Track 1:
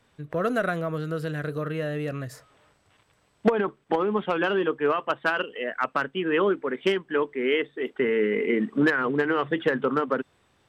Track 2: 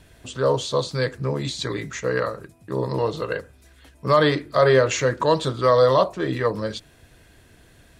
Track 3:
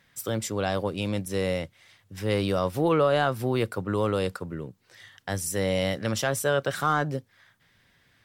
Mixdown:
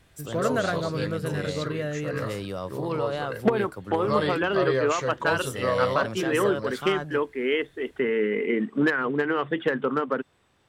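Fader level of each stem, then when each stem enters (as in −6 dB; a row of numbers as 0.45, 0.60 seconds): −1.0, −9.0, −7.5 decibels; 0.00, 0.00, 0.00 seconds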